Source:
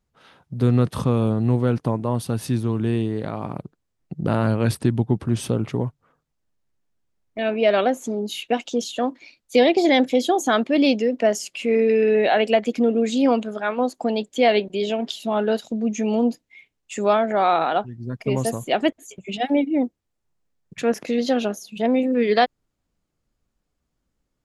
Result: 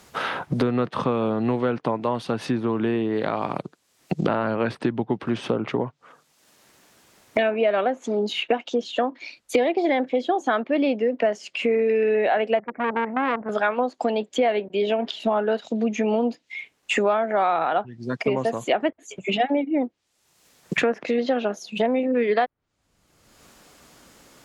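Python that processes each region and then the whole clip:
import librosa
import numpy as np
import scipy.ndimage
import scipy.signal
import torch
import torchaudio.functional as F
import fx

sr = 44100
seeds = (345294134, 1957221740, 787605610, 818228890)

y = fx.chain(x, sr, fx.steep_lowpass(hz=1900.0, slope=72),
    fx.level_steps(step_db=10),
    fx.transformer_sat(knee_hz=1400.0), at=(12.59, 13.49))
y = fx.env_lowpass_down(y, sr, base_hz=1900.0, full_db=-18.5)
y = fx.highpass(y, sr, hz=540.0, slope=6)
y = fx.band_squash(y, sr, depth_pct=100)
y = y * 10.0 ** (2.0 / 20.0)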